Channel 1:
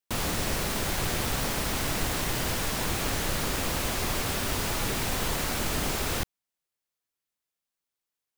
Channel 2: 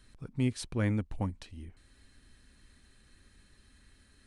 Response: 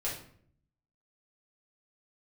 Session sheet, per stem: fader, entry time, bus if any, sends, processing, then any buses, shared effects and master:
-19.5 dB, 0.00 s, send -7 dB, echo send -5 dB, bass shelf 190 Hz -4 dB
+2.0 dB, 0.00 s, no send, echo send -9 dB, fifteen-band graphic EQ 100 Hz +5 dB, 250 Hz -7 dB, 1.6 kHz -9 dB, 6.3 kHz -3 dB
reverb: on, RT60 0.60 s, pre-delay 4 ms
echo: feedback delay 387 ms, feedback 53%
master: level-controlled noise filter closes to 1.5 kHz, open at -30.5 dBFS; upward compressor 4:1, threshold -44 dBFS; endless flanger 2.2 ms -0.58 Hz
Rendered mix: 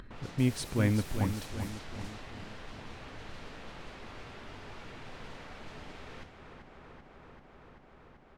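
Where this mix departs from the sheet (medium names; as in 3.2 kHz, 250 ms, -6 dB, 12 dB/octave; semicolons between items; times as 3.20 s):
stem 2: missing fifteen-band graphic EQ 100 Hz +5 dB, 250 Hz -7 dB, 1.6 kHz -9 dB, 6.3 kHz -3 dB; master: missing endless flanger 2.2 ms -0.58 Hz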